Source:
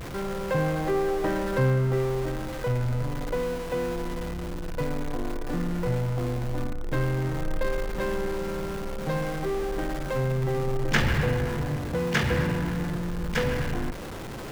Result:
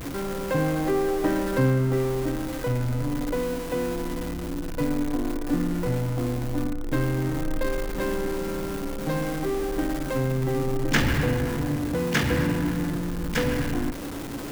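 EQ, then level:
parametric band 280 Hz +14.5 dB 0.25 octaves
high-shelf EQ 6,800 Hz +8.5 dB
0.0 dB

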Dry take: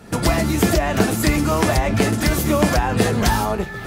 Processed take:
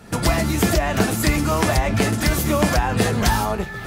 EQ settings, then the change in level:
parametric band 350 Hz −3 dB 1.7 octaves
0.0 dB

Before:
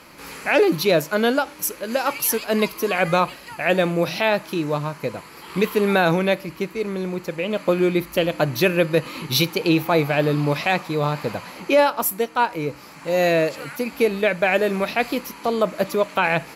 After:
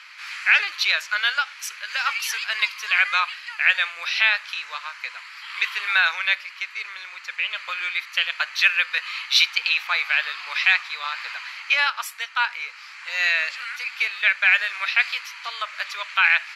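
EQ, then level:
high-pass filter 1,500 Hz 24 dB per octave
low-pass filter 4,000 Hz 12 dB per octave
+7.5 dB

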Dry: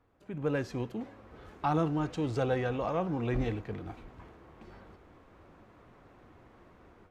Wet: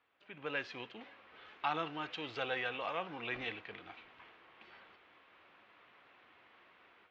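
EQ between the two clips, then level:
resonant band-pass 3,000 Hz, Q 1.8
high-frequency loss of the air 190 metres
+11.0 dB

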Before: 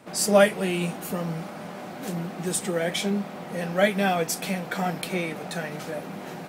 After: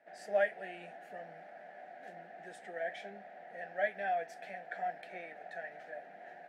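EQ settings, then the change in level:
pair of resonant band-passes 1,100 Hz, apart 1.3 octaves
−5.0 dB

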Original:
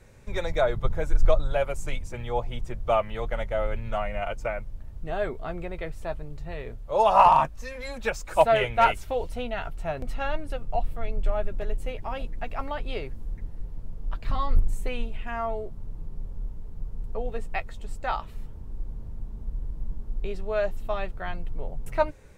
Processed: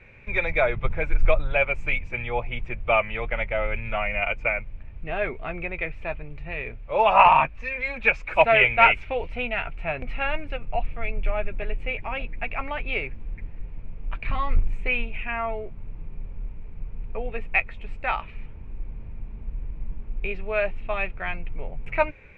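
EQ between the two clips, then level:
low-pass with resonance 2,400 Hz, resonance Q 8.1
0.0 dB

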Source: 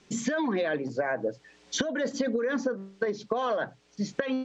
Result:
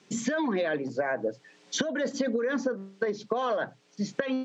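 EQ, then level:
high-pass filter 120 Hz 24 dB per octave
0.0 dB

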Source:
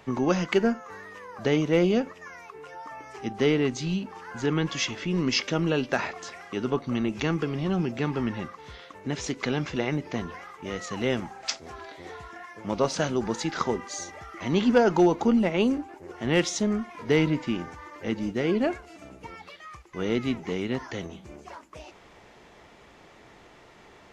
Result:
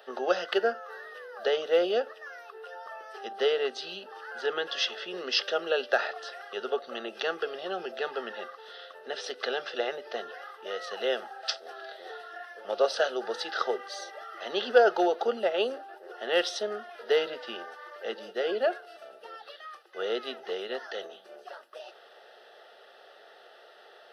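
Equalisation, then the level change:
Butterworth high-pass 310 Hz 36 dB per octave
phaser with its sweep stopped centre 1,500 Hz, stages 8
+3.0 dB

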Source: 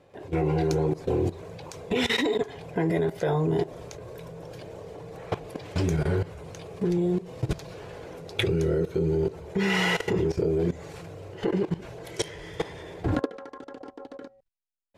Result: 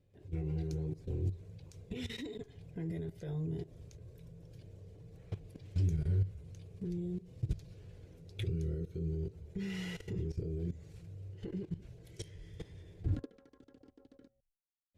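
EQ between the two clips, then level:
guitar amp tone stack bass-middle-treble 10-0-1
parametric band 96 Hz +5.5 dB 0.21 octaves
+4.0 dB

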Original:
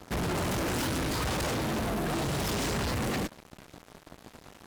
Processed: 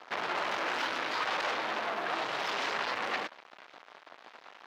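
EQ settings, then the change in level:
high-pass filter 860 Hz 12 dB per octave
high-frequency loss of the air 240 metres
+6.0 dB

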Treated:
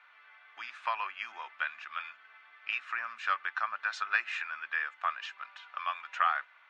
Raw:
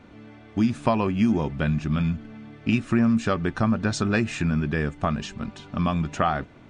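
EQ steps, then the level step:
high-pass filter 1,200 Hz 24 dB per octave
low-pass filter 2,300 Hz 12 dB per octave
+2.0 dB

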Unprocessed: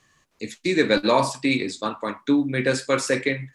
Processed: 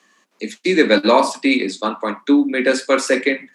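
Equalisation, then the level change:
Butterworth high-pass 180 Hz 96 dB per octave
high-shelf EQ 5,700 Hz −4.5 dB
+6.0 dB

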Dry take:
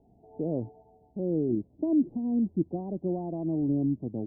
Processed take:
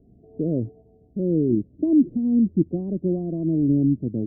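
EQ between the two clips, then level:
moving average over 52 samples
+9.0 dB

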